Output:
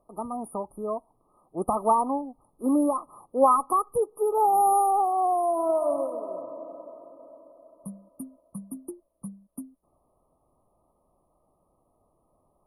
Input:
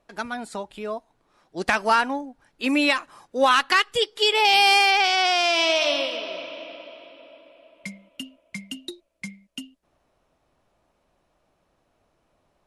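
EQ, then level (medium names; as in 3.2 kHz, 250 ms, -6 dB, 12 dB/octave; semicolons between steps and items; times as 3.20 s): brick-wall FIR band-stop 1.3–9.2 kHz; peaking EQ 8.6 kHz +7 dB 0.68 oct; 0.0 dB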